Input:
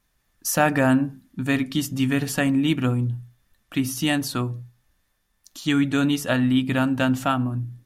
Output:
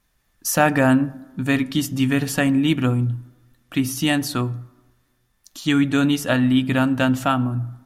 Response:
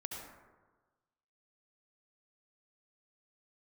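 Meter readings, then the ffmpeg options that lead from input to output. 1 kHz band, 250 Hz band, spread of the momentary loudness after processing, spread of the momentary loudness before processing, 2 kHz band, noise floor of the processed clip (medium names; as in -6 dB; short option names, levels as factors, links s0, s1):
+2.5 dB, +2.5 dB, 10 LU, 10 LU, +2.5 dB, -66 dBFS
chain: -filter_complex "[0:a]asplit=2[s0][s1];[1:a]atrim=start_sample=2205,lowpass=4900[s2];[s1][s2]afir=irnorm=-1:irlink=0,volume=0.106[s3];[s0][s3]amix=inputs=2:normalize=0,volume=1.26"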